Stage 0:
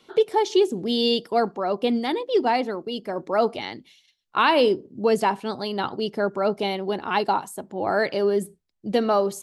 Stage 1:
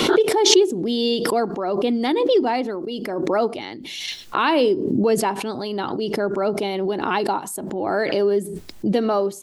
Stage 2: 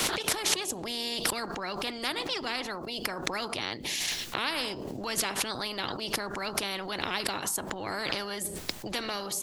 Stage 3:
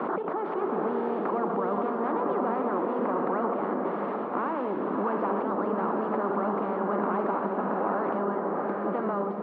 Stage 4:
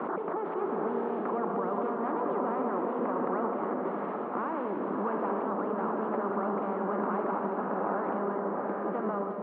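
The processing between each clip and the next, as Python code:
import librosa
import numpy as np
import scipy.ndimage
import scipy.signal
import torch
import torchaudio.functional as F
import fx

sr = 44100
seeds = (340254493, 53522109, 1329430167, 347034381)

y1 = fx.peak_eq(x, sr, hz=320.0, db=6.5, octaves=0.76)
y1 = fx.pre_swell(y1, sr, db_per_s=31.0)
y1 = F.gain(torch.from_numpy(y1), -1.5).numpy()
y2 = fx.spectral_comp(y1, sr, ratio=4.0)
y2 = F.gain(torch.from_numpy(y2), -6.5).numpy()
y3 = fx.power_curve(y2, sr, exponent=0.7)
y3 = scipy.signal.sosfilt(scipy.signal.ellip(3, 1.0, 70, [200.0, 1200.0], 'bandpass', fs=sr, output='sos'), y3)
y3 = fx.rev_bloom(y3, sr, seeds[0], attack_ms=740, drr_db=0.0)
y4 = scipy.signal.sosfilt(scipy.signal.butter(2, 3100.0, 'lowpass', fs=sr, output='sos'), y3)
y4 = y4 + 10.0 ** (-9.0 / 20.0) * np.pad(y4, (int(188 * sr / 1000.0), 0))[:len(y4)]
y4 = F.gain(torch.from_numpy(y4), -3.5).numpy()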